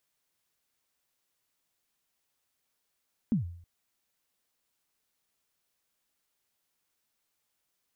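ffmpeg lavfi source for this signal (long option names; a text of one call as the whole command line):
ffmpeg -f lavfi -i "aevalsrc='0.0944*pow(10,-3*t/0.6)*sin(2*PI*(250*0.125/log(86/250)*(exp(log(86/250)*min(t,0.125)/0.125)-1)+86*max(t-0.125,0)))':duration=0.32:sample_rate=44100" out.wav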